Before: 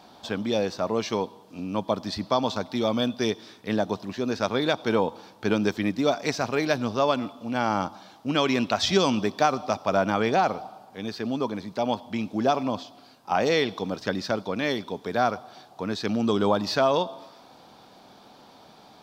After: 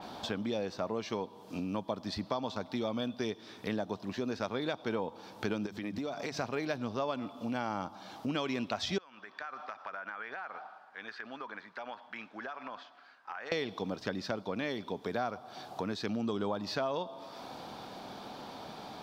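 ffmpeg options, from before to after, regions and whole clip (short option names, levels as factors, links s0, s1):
-filter_complex "[0:a]asettb=1/sr,asplit=3[s0][s1][s2];[s0]atrim=end=5.664[s3];[s1]atrim=start=5.66:end=6.37,asetpts=PTS-STARTPTS,afade=t=in:d=0.004:c=qsin,afade=t=out:st=0.706:d=0.004:c=qsin,bandreject=f=50:t=h:w=6,bandreject=f=100:t=h:w=6,bandreject=f=150:t=h:w=6,bandreject=f=200:t=h:w=6,acompressor=threshold=0.0251:ratio=4:attack=3.2:release=140:knee=1:detection=peak[s4];[s2]atrim=start=6.366[s5];[s3][s4]acrossfade=d=0.004:c1=hsin:c2=qsin[s6];[s6][s5]acrossfade=d=0.004:c1=qsin:c2=hsin,asettb=1/sr,asplit=3[s7][s8][s9];[s7]atrim=end=8.984[s10];[s8]atrim=start=8.98:end=13.52,asetpts=PTS-STARTPTS,afade=t=in:d=0.004:c=qsin,afade=t=out:st=4.536:d=0.004:c=qsin,bandpass=f=1600:t=q:w=3.5,acompressor=threshold=0.00794:ratio=6:attack=3.2:release=140:knee=1:detection=peak[s11];[s9]atrim=start=13.516[s12];[s10][s11]acrossfade=d=0.004:c1=hsin:c2=qsin[s13];[s13][s12]acrossfade=d=0.004:c1=qsin:c2=hsin,acompressor=threshold=0.00708:ratio=3,adynamicequalizer=threshold=0.001:dfrequency=4100:dqfactor=0.7:tfrequency=4100:tqfactor=0.7:attack=5:release=100:ratio=0.375:range=2.5:mode=cutabove:tftype=highshelf,volume=2"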